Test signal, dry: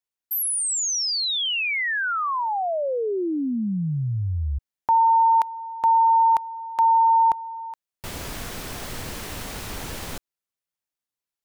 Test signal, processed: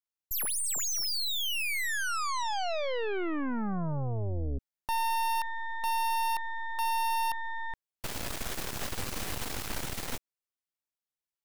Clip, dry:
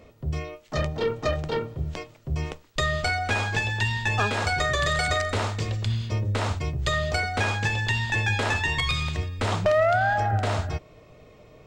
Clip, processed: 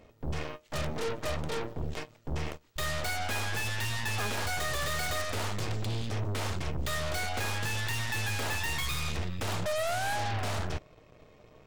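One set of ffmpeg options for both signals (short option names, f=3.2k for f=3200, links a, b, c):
-af "asoftclip=type=tanh:threshold=-22.5dB,aeval=exprs='0.075*(cos(1*acos(clip(val(0)/0.075,-1,1)))-cos(1*PI/2))+0.0299*(cos(6*acos(clip(val(0)/0.075,-1,1)))-cos(6*PI/2))+0.000944*(cos(7*acos(clip(val(0)/0.075,-1,1)))-cos(7*PI/2))':c=same,volume=-6dB"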